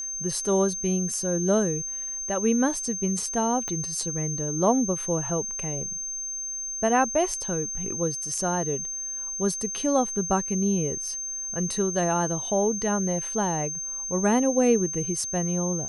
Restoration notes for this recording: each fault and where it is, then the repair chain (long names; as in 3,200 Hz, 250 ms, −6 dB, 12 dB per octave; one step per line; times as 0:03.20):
whistle 6,300 Hz −30 dBFS
0:03.68: click −18 dBFS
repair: click removal
notch filter 6,300 Hz, Q 30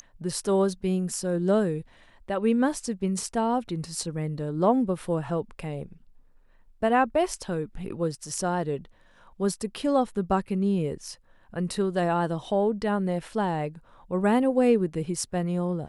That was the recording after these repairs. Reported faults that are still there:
0:03.68: click